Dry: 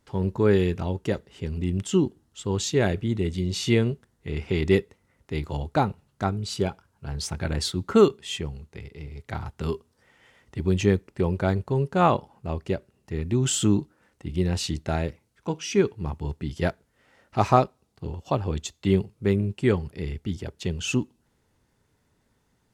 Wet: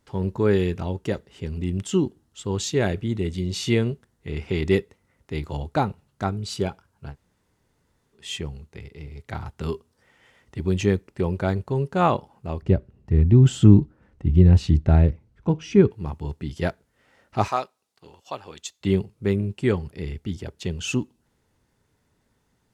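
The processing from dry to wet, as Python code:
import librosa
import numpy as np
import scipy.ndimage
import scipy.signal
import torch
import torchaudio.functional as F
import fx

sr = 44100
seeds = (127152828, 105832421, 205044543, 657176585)

y = fx.riaa(x, sr, side='playback', at=(12.62, 15.91))
y = fx.highpass(y, sr, hz=1400.0, slope=6, at=(17.48, 18.81))
y = fx.edit(y, sr, fx.room_tone_fill(start_s=7.11, length_s=1.06, crossfade_s=0.1), tone=tone)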